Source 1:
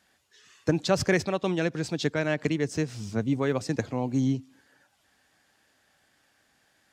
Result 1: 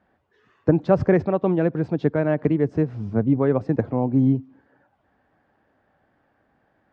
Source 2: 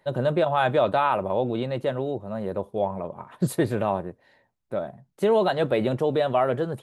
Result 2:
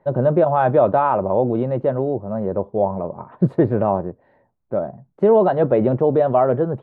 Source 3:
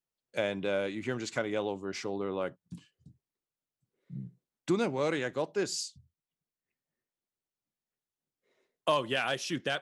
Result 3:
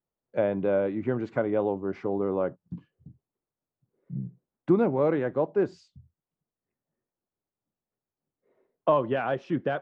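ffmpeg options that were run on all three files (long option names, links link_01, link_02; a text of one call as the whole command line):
ffmpeg -i in.wav -af "lowpass=1000,volume=7dB" out.wav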